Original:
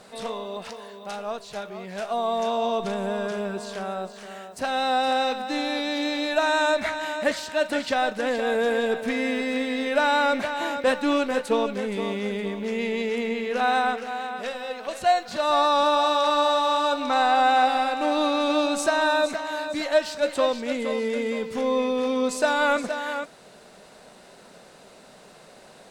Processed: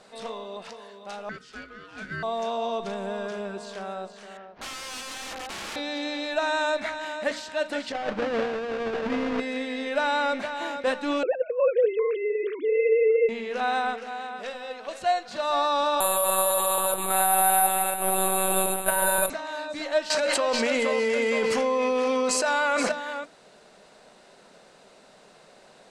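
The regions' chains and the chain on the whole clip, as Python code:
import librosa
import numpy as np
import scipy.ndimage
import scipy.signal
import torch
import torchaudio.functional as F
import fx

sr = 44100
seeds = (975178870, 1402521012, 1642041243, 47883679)

y = fx.chain(x, sr, fx.highpass(hz=270.0, slope=24),
    fx.high_shelf(hz=9500.0, db=-7.0),
    fx.ring_mod(carrier_hz=860.0), at=(1.29, 2.23))
y = fx.chain(y, sr, fx.cvsd(bps=32000),
    fx.lowpass(hz=1900.0, slope=12),
    fx.overflow_wrap(gain_db=27.0), at=(4.37, 5.76))
y = fx.chain(y, sr, fx.halfwave_hold(),
    fx.over_compress(threshold_db=-22.0, ratio=-0.5),
    fx.bessel_lowpass(hz=2300.0, order=2), at=(7.92, 9.4))
y = fx.chain(y, sr, fx.sine_speech(),
    fx.peak_eq(hz=500.0, db=15.0, octaves=0.3),
    fx.over_compress(threshold_db=-15.0, ratio=-0.5), at=(11.23, 13.29))
y = fx.chain(y, sr, fx.echo_single(ms=979, db=-10.0),
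    fx.lpc_monotone(seeds[0], pitch_hz=190.0, order=16),
    fx.resample_bad(factor=4, down='filtered', up='zero_stuff'), at=(16.0, 19.3))
y = fx.chain(y, sr, fx.low_shelf(hz=350.0, db=-11.0),
    fx.notch(hz=3600.0, q=7.9),
    fx.env_flatten(amount_pct=100), at=(20.1, 22.92))
y = scipy.signal.sosfilt(scipy.signal.butter(2, 8800.0, 'lowpass', fs=sr, output='sos'), y)
y = fx.peak_eq(y, sr, hz=74.0, db=-4.0, octaves=2.8)
y = fx.hum_notches(y, sr, base_hz=60, count=5)
y = y * 10.0 ** (-3.5 / 20.0)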